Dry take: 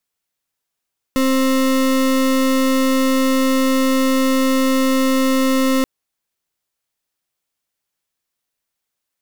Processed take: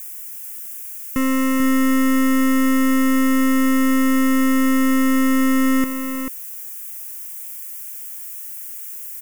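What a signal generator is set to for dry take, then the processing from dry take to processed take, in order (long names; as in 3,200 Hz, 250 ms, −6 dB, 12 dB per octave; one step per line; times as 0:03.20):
pulse wave 264 Hz, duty 33% −15.5 dBFS 4.68 s
spike at every zero crossing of −29.5 dBFS
phaser with its sweep stopped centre 1,700 Hz, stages 4
on a send: single-tap delay 440 ms −7.5 dB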